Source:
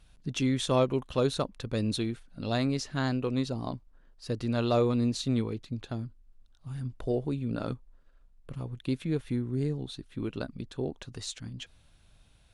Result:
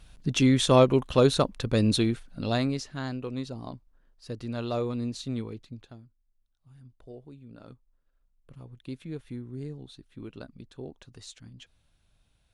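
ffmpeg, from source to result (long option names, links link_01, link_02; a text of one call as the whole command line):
ffmpeg -i in.wav -af "volume=15dB,afade=type=out:start_time=2.13:duration=0.8:silence=0.281838,afade=type=out:start_time=5.61:duration=0.41:silence=0.266073,afade=type=in:start_time=7.54:duration=1.46:silence=0.375837" out.wav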